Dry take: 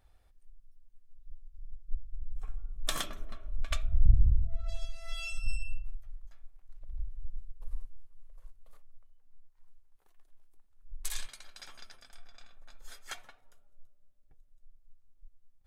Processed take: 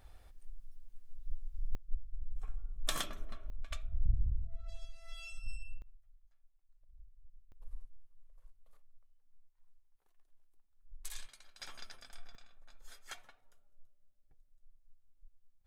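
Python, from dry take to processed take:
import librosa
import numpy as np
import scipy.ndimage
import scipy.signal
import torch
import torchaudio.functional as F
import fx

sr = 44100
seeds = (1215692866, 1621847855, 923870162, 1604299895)

y = fx.gain(x, sr, db=fx.steps((0.0, 7.5), (1.75, -2.5), (3.5, -9.5), (5.82, -20.0), (7.52, -8.5), (11.61, 1.0), (12.35, -5.5)))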